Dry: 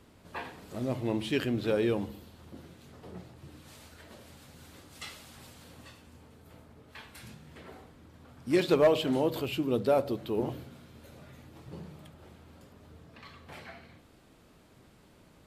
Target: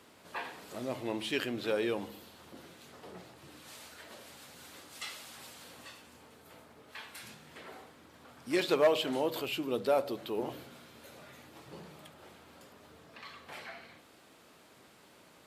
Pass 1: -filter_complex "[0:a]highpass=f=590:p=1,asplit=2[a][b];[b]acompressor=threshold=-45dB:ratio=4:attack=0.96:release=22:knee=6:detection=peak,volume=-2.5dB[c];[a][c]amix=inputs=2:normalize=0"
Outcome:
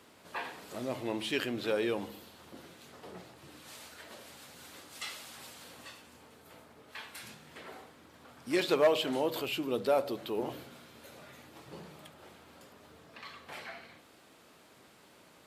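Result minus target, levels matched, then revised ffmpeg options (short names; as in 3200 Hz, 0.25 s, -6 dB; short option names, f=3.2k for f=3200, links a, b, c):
compressor: peak gain reduction -5 dB
-filter_complex "[0:a]highpass=f=590:p=1,asplit=2[a][b];[b]acompressor=threshold=-51.5dB:ratio=4:attack=0.96:release=22:knee=6:detection=peak,volume=-2.5dB[c];[a][c]amix=inputs=2:normalize=0"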